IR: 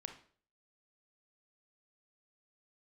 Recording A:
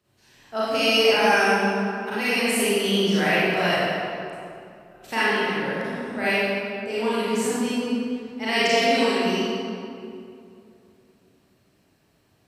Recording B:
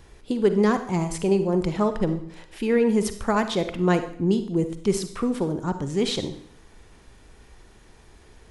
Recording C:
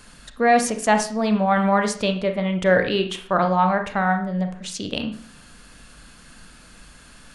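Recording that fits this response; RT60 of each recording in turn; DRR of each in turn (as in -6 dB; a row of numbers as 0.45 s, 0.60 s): C; 2.5 s, 0.65 s, 0.50 s; -11.0 dB, 9.0 dB, 5.5 dB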